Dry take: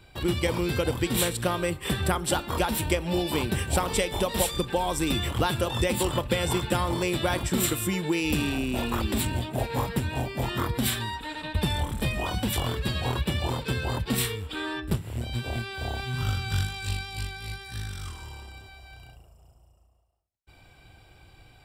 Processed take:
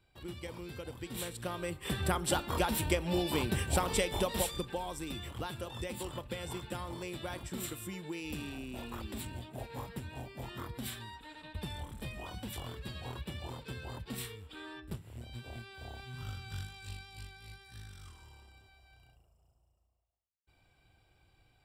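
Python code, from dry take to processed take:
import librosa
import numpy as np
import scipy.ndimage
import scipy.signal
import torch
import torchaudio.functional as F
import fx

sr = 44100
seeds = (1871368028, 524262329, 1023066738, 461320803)

y = fx.gain(x, sr, db=fx.line((0.92, -17.5), (2.19, -5.0), (4.2, -5.0), (5.06, -14.5)))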